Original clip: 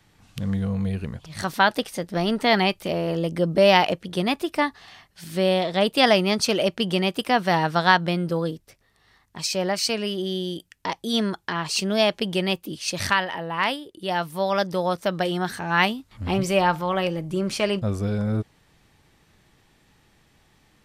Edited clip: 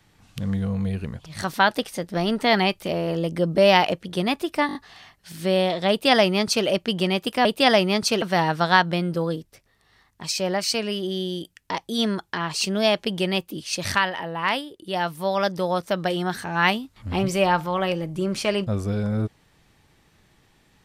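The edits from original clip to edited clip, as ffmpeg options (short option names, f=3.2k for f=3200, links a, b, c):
-filter_complex "[0:a]asplit=7[a][b][c][d][e][f][g];[a]atrim=end=4.692[h];[b]atrim=start=4.668:end=4.692[i];[c]atrim=start=4.668:end=4.692[j];[d]atrim=start=4.668:end=4.692[k];[e]atrim=start=4.668:end=7.372[l];[f]atrim=start=5.818:end=6.592[m];[g]atrim=start=7.368[n];[h][i]acrossfade=d=0.004:c1=hsin:c2=hsin[o];[o][j]acrossfade=d=0.004:c1=hsin:c2=hsin[p];[p][k]acrossfade=d=0.004:c1=hsin:c2=hsin[q];[q][l]acrossfade=d=0.004:c1=hsin:c2=hsin[r];[r][m]acrossfade=d=0.004:c1=hsin:c2=hsin[s];[s][n]acrossfade=d=0.004:c1=hsin:c2=hsin"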